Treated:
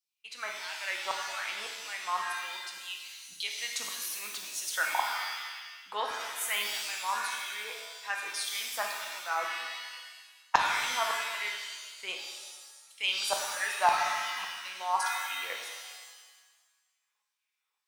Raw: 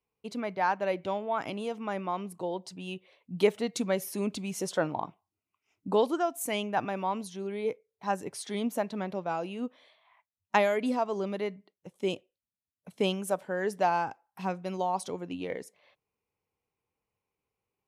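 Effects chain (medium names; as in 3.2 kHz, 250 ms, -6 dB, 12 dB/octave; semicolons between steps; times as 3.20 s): LFO high-pass saw down 1.8 Hz 930–5100 Hz; pitch-shifted reverb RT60 1.3 s, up +7 st, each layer -2 dB, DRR 1 dB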